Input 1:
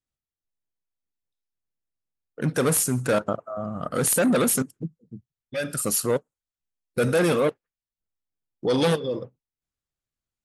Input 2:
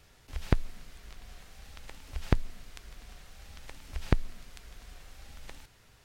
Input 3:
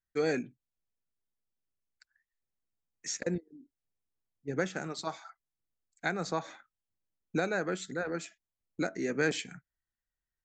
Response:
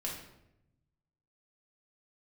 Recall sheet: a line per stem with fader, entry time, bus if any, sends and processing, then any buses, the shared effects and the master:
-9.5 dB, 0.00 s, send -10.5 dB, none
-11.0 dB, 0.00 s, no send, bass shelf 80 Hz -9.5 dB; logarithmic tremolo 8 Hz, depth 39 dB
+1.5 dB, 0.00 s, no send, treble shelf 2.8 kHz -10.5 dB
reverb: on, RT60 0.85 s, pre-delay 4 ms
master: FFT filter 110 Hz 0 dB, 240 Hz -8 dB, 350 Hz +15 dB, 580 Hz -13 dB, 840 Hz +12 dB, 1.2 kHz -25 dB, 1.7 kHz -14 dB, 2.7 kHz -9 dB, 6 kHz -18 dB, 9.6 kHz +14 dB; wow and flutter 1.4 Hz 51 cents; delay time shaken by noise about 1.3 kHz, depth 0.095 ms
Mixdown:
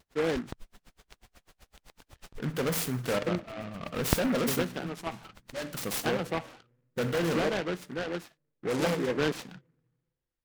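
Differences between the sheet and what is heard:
stem 2 -11.0 dB -> +1.0 dB; master: missing FFT filter 110 Hz 0 dB, 240 Hz -8 dB, 350 Hz +15 dB, 580 Hz -13 dB, 840 Hz +12 dB, 1.2 kHz -25 dB, 1.7 kHz -14 dB, 2.7 kHz -9 dB, 6 kHz -18 dB, 9.6 kHz +14 dB

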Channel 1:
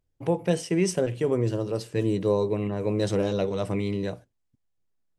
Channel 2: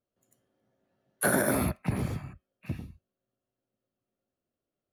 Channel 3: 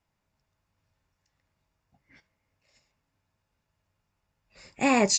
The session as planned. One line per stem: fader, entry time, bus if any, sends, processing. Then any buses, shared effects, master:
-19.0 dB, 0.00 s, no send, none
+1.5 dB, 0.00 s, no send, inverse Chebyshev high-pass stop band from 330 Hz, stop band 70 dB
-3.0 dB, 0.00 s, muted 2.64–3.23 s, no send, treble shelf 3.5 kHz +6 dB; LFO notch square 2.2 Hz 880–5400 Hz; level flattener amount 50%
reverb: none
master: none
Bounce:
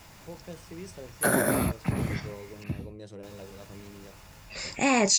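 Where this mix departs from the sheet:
stem 2: missing inverse Chebyshev high-pass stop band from 330 Hz, stop band 70 dB; stem 3: missing LFO notch square 2.2 Hz 880–5400 Hz

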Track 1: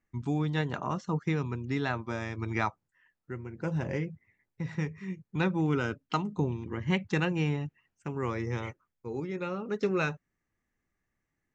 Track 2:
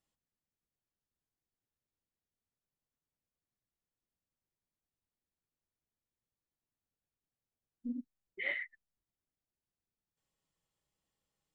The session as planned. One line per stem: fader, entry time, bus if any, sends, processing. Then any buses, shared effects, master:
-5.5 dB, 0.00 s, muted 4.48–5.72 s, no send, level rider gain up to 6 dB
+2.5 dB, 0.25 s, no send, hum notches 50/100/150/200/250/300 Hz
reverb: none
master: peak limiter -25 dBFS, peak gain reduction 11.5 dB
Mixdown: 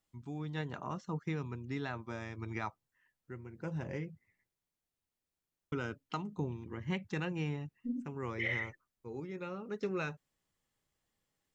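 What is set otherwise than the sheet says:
stem 1 -5.5 dB -> -13.5 dB; stem 2: entry 0.25 s -> 0.00 s

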